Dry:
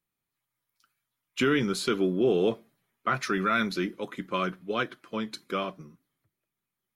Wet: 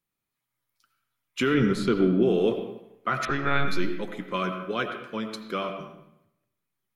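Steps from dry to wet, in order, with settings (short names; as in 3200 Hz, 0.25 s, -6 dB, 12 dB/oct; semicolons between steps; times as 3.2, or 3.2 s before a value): 1.54–2.23 tilt -2.5 dB/oct; 3.25–3.68 monotone LPC vocoder at 8 kHz 140 Hz; reverb RT60 0.80 s, pre-delay 45 ms, DRR 6 dB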